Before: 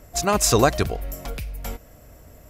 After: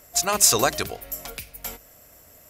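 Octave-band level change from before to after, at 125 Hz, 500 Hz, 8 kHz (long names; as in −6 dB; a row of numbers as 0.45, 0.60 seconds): −11.5, −5.0, +4.5 decibels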